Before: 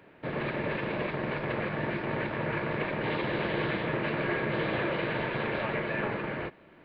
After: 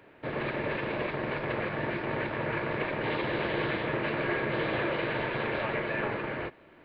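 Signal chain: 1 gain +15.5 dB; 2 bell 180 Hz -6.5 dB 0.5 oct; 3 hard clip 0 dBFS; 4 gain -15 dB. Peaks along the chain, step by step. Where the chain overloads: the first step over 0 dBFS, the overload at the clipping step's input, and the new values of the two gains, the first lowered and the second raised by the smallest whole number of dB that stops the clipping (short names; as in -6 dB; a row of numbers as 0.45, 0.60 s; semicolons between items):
-1.5, -1.5, -1.5, -16.5 dBFS; no overload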